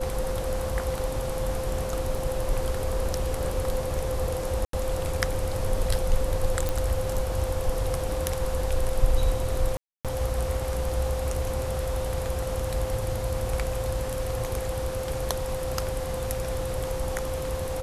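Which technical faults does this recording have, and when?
tone 520 Hz -31 dBFS
2.15 gap 2.8 ms
4.65–4.73 gap 83 ms
6.69 pop
9.77–10.05 gap 0.277 s

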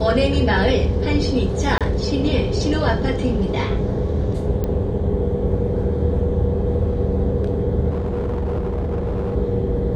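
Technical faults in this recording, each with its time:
1.78–1.81 gap 27 ms
4.64 pop -12 dBFS
7.89–9.37 clipped -19 dBFS

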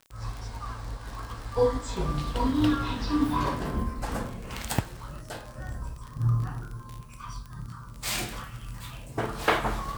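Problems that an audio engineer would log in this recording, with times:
crackle 32/s -33 dBFS

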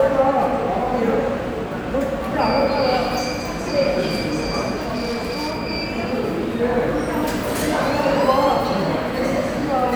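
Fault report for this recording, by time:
4.78–5.6 clipped -20.5 dBFS

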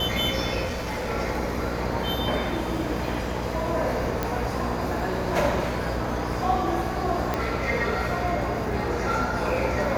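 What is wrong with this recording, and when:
buzz 60 Hz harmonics 11 -31 dBFS
crackle -35 dBFS
0.65–1.11 clipped -26 dBFS
4.23 pop -11 dBFS
7.34 pop -11 dBFS

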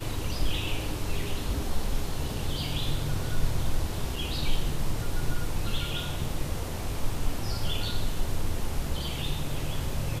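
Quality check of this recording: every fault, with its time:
4.16 gap 3.2 ms

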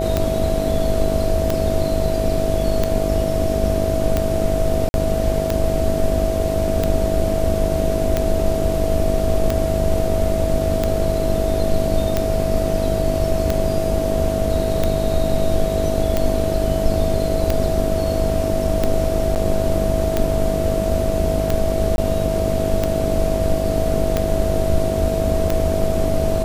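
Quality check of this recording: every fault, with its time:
buzz 50 Hz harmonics 15 -24 dBFS
tick 45 rpm -5 dBFS
tone 650 Hz -22 dBFS
4.89–4.94 gap 51 ms
19.35–19.36 gap 9.3 ms
21.96–21.98 gap 21 ms

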